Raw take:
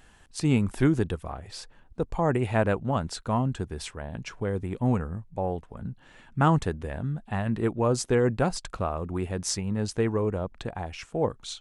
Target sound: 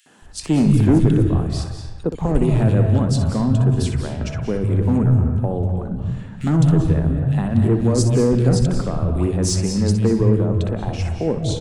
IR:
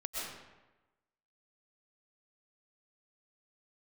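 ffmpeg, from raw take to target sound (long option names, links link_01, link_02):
-filter_complex "[0:a]acrossover=split=400|3000[link_01][link_02][link_03];[link_02]acompressor=threshold=-37dB:ratio=5[link_04];[link_01][link_04][link_03]amix=inputs=3:normalize=0,asplit=2[link_05][link_06];[1:a]atrim=start_sample=2205,adelay=62[link_07];[link_06][link_07]afir=irnorm=-1:irlink=0,volume=-7dB[link_08];[link_05][link_08]amix=inputs=2:normalize=0,asoftclip=type=hard:threshold=-19dB,lowshelf=frequency=330:gain=9.5,acrossover=split=170|2300[link_09][link_10][link_11];[link_10]adelay=60[link_12];[link_09]adelay=220[link_13];[link_13][link_12][link_11]amix=inputs=3:normalize=0,volume=6dB"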